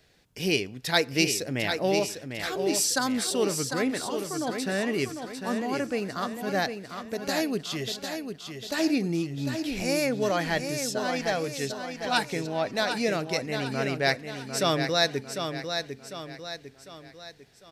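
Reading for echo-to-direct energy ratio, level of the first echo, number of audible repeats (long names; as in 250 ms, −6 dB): −6.0 dB, −7.0 dB, 4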